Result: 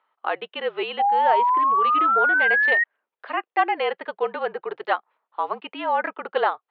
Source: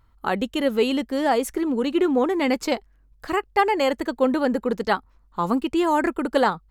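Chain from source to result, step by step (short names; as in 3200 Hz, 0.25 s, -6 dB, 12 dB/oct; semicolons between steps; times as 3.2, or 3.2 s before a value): mistuned SSB -50 Hz 540–3400 Hz; painted sound rise, 0.99–2.84, 780–1900 Hz -19 dBFS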